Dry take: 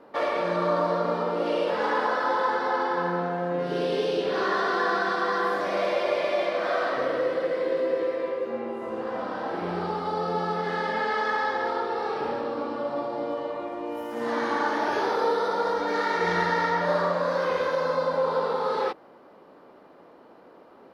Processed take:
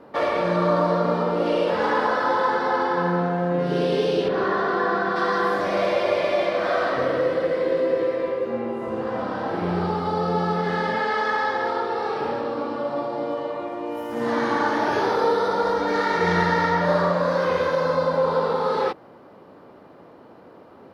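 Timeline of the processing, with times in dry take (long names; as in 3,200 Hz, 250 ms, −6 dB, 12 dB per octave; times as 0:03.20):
0:04.28–0:05.16: low-pass filter 1,700 Hz 6 dB per octave
0:10.95–0:14.10: low-shelf EQ 150 Hz −10.5 dB
whole clip: parametric band 100 Hz +11.5 dB 1.7 octaves; level +3 dB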